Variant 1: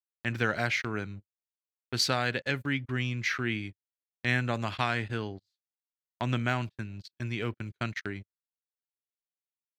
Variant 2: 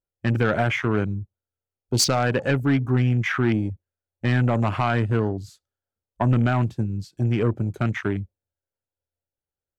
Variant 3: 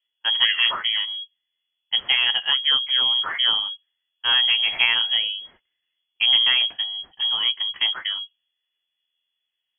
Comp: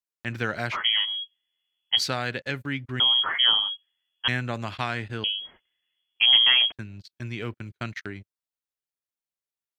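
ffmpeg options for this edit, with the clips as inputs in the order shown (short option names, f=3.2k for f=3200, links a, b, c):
-filter_complex "[2:a]asplit=3[a][b][c];[0:a]asplit=4[d][e][f][g];[d]atrim=end=0.77[h];[a]atrim=start=0.71:end=2.02[i];[e]atrim=start=1.96:end=3.002[j];[b]atrim=start=2.998:end=4.282[k];[f]atrim=start=4.278:end=5.242[l];[c]atrim=start=5.238:end=6.722[m];[g]atrim=start=6.718[n];[h][i]acrossfade=d=0.06:c1=tri:c2=tri[o];[o][j]acrossfade=d=0.06:c1=tri:c2=tri[p];[p][k]acrossfade=d=0.004:c1=hsin:c2=hsin[q];[q][l]acrossfade=d=0.004:c1=hsin:c2=hsin[r];[r][m]acrossfade=d=0.004:c1=hsin:c2=hsin[s];[s][n]acrossfade=d=0.004:c1=hsin:c2=hsin"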